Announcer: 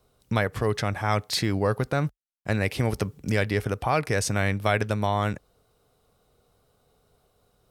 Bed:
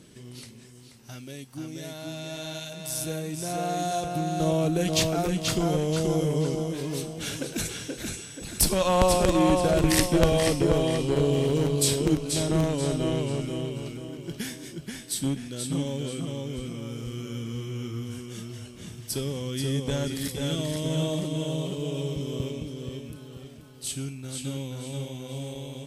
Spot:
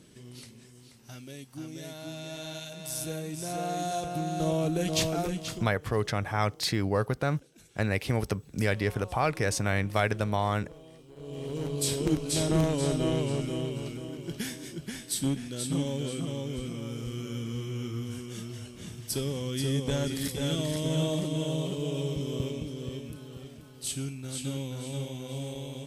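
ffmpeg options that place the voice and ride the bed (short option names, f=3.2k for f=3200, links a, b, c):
-filter_complex "[0:a]adelay=5300,volume=-3dB[a];[1:a]volume=22dB,afade=t=out:st=5.21:d=0.51:silence=0.0707946,afade=t=in:st=11.16:d=1.26:silence=0.0530884[b];[a][b]amix=inputs=2:normalize=0"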